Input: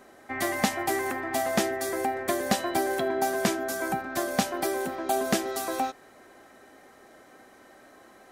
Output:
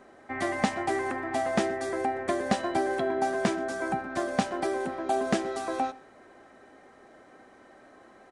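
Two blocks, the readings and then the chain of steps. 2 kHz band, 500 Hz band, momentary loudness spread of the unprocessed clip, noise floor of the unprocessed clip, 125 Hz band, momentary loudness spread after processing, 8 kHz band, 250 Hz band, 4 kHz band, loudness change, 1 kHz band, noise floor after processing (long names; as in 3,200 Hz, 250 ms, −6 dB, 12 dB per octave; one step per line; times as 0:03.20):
−2.0 dB, −0.5 dB, 4 LU, −54 dBFS, 0.0 dB, 4 LU, −9.0 dB, 0.0 dB, −5.5 dB, −1.0 dB, −0.5 dB, −55 dBFS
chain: high-shelf EQ 3,500 Hz −10 dB
on a send: single-tap delay 122 ms −22 dB
on the sum: downsampling to 22,050 Hz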